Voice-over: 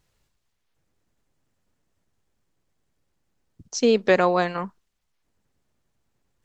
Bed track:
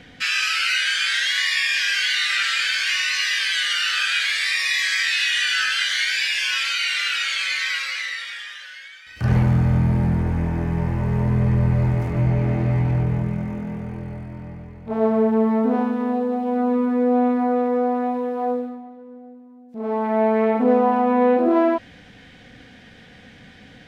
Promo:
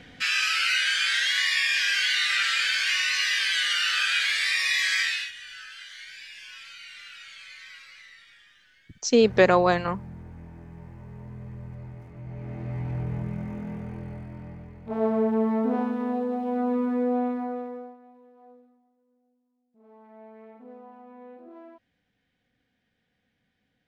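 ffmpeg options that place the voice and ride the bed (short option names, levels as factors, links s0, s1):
-filter_complex "[0:a]adelay=5300,volume=1.06[s0];[1:a]volume=4.47,afade=t=out:st=5:d=0.32:silence=0.11885,afade=t=in:st=12.23:d=1.46:silence=0.158489,afade=t=out:st=16.95:d=1.02:silence=0.0630957[s1];[s0][s1]amix=inputs=2:normalize=0"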